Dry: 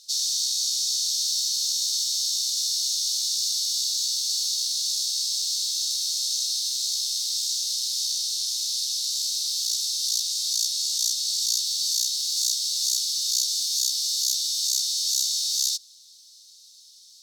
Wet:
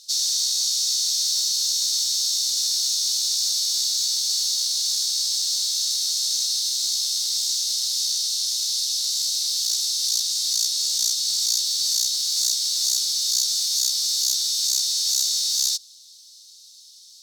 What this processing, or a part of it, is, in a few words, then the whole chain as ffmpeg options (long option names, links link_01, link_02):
parallel distortion: -filter_complex "[0:a]asplit=2[link_01][link_02];[link_02]asoftclip=type=hard:threshold=-22.5dB,volume=-7dB[link_03];[link_01][link_03]amix=inputs=2:normalize=0"